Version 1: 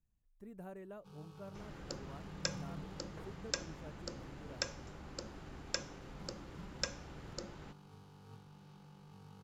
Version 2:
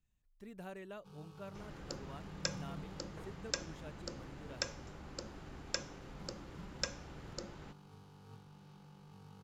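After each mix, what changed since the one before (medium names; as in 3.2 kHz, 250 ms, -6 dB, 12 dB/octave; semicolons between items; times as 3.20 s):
speech: add peaking EQ 3.7 kHz +14 dB 2.2 oct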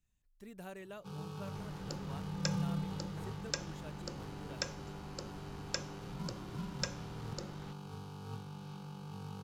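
speech: add treble shelf 5.3 kHz +8 dB; first sound +11.0 dB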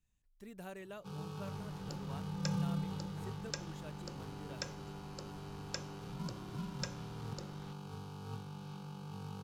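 second sound -4.5 dB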